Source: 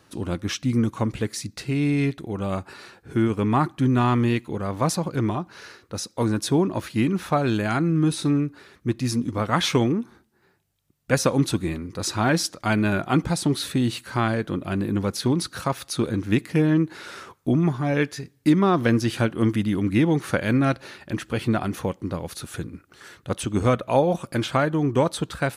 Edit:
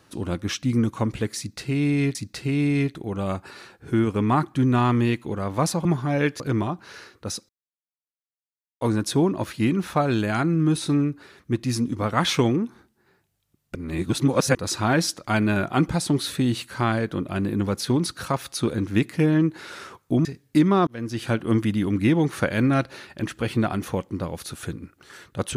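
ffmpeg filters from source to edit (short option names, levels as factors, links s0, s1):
-filter_complex "[0:a]asplit=9[s0][s1][s2][s3][s4][s5][s6][s7][s8];[s0]atrim=end=2.152[s9];[s1]atrim=start=1.378:end=5.082[s10];[s2]atrim=start=17.608:end=18.162[s11];[s3]atrim=start=5.078:end=6.17,asetpts=PTS-STARTPTS,afade=t=out:st=1.088:d=0.004:c=hsin,apad=pad_dur=1.32[s12];[s4]atrim=start=6.17:end=11.112,asetpts=PTS-STARTPTS,afade=t=in:d=0.004:c=hsin[s13];[s5]atrim=start=11.108:end=11.912,asetpts=PTS-STARTPTS,areverse[s14];[s6]atrim=start=11.908:end=17.612[s15];[s7]atrim=start=18.158:end=18.78,asetpts=PTS-STARTPTS,afade=t=out:st=0.618:d=0.004:c=hsin[s16];[s8]atrim=start=18.78,asetpts=PTS-STARTPTS,afade=t=in:d=0.54[s17];[s9][s10]acrossfade=d=0.004:c1=hsin:c2=hsin[s18];[s18][s11]acrossfade=d=0.004:c1=hsin:c2=hsin[s19];[s12][s13]concat=n=2:v=0:a=1[s20];[s19][s20]acrossfade=d=0.004:c1=hsin:c2=hsin[s21];[s21][s14]acrossfade=d=0.004:c1=hsin:c2=hsin[s22];[s22][s15]acrossfade=d=0.004:c1=hsin:c2=hsin[s23];[s16][s17]concat=n=2:v=0:a=1[s24];[s23][s24]acrossfade=d=0.004:c1=hsin:c2=hsin"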